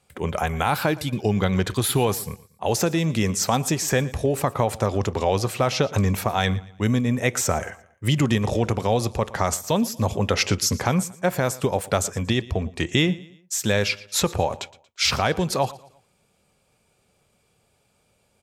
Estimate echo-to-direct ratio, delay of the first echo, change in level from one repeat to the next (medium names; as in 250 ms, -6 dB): -19.5 dB, 116 ms, -8.5 dB